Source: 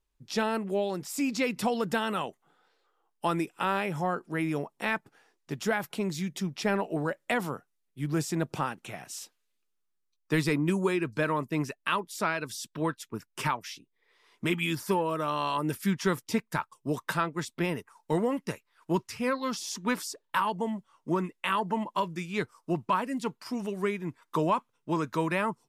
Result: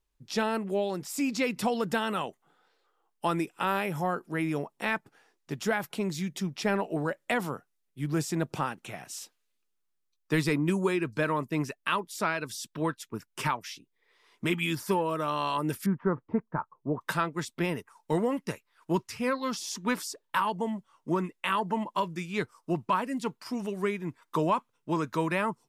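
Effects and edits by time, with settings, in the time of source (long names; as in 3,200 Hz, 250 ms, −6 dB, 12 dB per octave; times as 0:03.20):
0:03.67–0:04.31: parametric band 12,000 Hz +11 dB 0.3 octaves
0:15.86–0:17.01: low-pass filter 1,300 Hz 24 dB per octave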